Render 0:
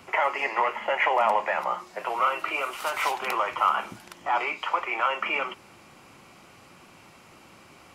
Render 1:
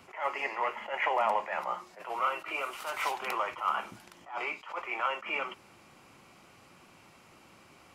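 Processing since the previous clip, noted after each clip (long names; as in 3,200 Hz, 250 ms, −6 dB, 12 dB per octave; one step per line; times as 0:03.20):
level that may rise only so fast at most 160 dB per second
level −5.5 dB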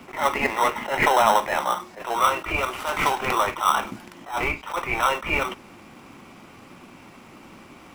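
octave-band graphic EQ 250/1,000/2,000 Hz +9/+3/+5 dB
in parallel at −5.5 dB: decimation without filtering 19×
on the sum: level +4.5 dB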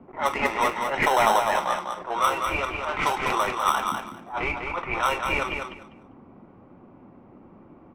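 low-pass that shuts in the quiet parts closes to 640 Hz, open at −17 dBFS
on a send: repeating echo 199 ms, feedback 18%, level −5.5 dB
on the sum: level −2.5 dB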